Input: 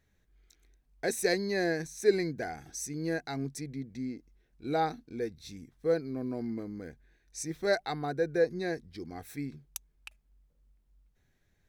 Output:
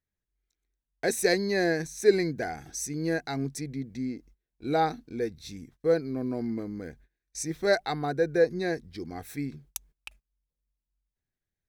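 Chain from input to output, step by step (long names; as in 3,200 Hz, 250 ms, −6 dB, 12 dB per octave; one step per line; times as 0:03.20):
noise gate −57 dBFS, range −22 dB
level +4 dB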